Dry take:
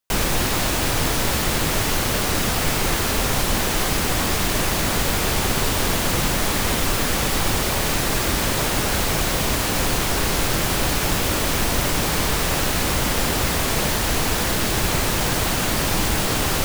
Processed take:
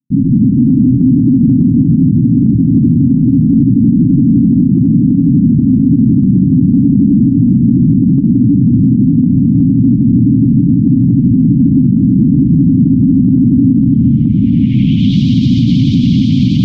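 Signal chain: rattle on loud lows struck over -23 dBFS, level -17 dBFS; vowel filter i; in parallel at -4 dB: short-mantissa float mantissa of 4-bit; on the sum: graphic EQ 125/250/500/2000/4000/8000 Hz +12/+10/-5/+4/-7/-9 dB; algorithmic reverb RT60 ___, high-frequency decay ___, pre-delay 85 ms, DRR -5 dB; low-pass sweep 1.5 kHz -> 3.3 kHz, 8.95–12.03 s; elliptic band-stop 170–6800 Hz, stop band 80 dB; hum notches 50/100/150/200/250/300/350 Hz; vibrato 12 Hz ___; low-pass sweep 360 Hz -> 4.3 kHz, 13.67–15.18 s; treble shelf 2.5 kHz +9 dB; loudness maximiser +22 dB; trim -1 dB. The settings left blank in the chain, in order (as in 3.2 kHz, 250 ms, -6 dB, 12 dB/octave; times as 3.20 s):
4.4 s, 0.9×, 84 cents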